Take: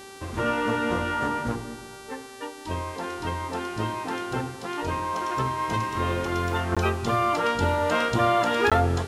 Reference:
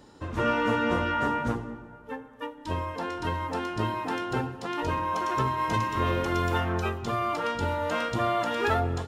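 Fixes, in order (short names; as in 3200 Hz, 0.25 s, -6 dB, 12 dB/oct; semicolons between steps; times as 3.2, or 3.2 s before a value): de-click; de-hum 389.6 Hz, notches 30; interpolate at 6.75/8.7, 16 ms; gain 0 dB, from 6.72 s -5 dB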